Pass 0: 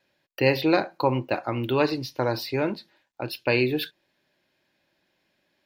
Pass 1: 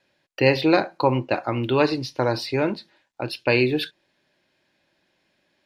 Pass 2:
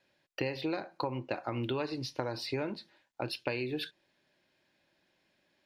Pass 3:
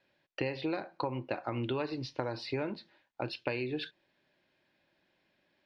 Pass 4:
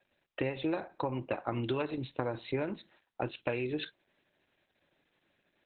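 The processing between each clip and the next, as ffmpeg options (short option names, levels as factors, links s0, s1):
-af "lowpass=f=11000:w=0.5412,lowpass=f=11000:w=1.3066,volume=1.41"
-af "acompressor=threshold=0.0562:ratio=16,volume=0.562"
-af "lowpass=4200"
-af "volume=1.26" -ar 48000 -c:a libopus -b:a 8k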